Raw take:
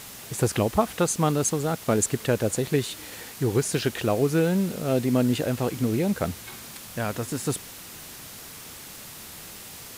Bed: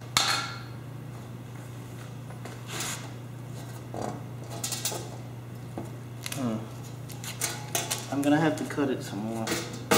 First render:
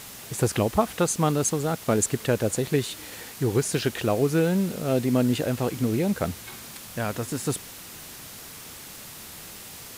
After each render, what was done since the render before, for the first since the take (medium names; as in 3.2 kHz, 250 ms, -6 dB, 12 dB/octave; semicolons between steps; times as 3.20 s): no audible change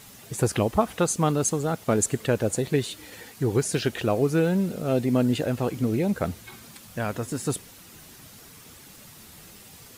noise reduction 8 dB, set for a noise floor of -42 dBFS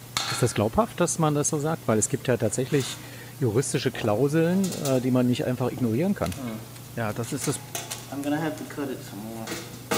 add bed -3.5 dB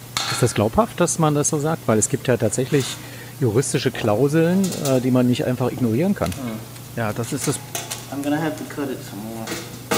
trim +5 dB; peak limiter -3 dBFS, peak gain reduction 1.5 dB